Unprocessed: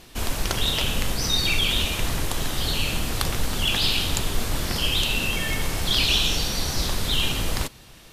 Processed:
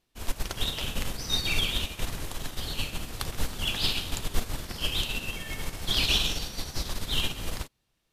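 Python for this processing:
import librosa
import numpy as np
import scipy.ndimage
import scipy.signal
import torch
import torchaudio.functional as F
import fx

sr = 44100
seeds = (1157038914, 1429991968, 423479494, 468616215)

y = fx.upward_expand(x, sr, threshold_db=-36.0, expansion=2.5)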